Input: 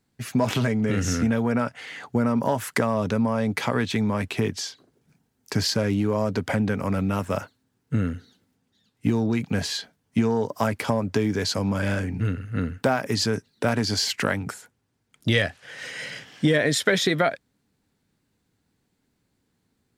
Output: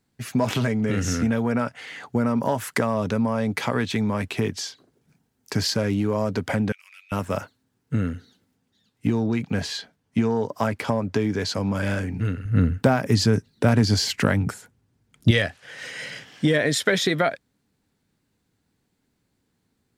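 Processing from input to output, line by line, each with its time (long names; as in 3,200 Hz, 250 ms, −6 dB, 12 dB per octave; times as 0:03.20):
0:06.72–0:07.12: four-pole ladder high-pass 2,300 Hz, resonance 60%
0:09.07–0:11.74: high-shelf EQ 7,300 Hz −7.5 dB
0:12.45–0:15.31: low-shelf EQ 250 Hz +11 dB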